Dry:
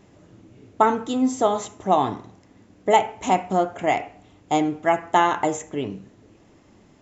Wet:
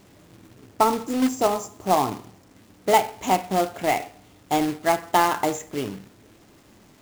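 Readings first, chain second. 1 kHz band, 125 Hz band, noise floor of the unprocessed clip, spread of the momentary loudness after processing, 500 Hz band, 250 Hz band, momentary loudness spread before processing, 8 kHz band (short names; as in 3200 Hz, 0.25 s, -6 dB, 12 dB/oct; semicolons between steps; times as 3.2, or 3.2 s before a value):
-1.0 dB, -1.0 dB, -55 dBFS, 11 LU, -1.5 dB, -1.0 dB, 11 LU, n/a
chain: spectral delete 0.55–2.56, 1400–4600 Hz; companded quantiser 4-bit; gain -1.5 dB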